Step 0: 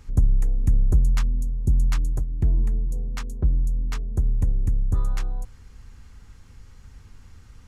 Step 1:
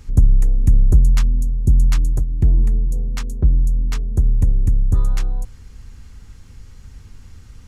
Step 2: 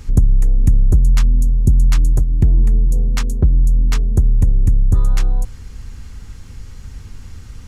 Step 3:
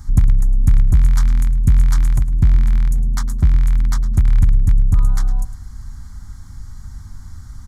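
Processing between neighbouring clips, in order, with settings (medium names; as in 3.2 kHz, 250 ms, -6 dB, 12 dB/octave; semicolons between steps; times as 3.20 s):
peaking EQ 1.1 kHz -4.5 dB 2.2 oct; trim +6.5 dB
compression 3:1, threshold -16 dBFS, peak gain reduction 8 dB; trim +6.5 dB
rattle on loud lows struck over -8 dBFS, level -14 dBFS; static phaser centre 1.1 kHz, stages 4; feedback delay 107 ms, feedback 31%, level -15 dB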